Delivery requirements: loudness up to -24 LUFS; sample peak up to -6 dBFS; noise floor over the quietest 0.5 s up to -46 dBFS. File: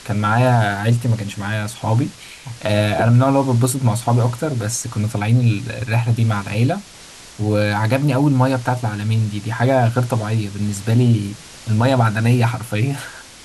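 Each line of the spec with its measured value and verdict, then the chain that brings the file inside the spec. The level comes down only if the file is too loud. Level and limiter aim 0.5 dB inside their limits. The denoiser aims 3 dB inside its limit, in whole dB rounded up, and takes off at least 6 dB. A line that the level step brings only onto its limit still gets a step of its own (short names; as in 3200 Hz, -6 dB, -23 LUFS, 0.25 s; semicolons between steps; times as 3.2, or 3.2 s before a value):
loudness -18.5 LUFS: fail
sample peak -5.5 dBFS: fail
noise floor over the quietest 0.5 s -40 dBFS: fail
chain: denoiser 6 dB, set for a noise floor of -40 dBFS; gain -6 dB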